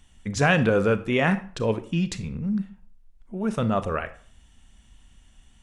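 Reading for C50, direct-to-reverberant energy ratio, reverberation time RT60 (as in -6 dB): 14.5 dB, 12.0 dB, 0.45 s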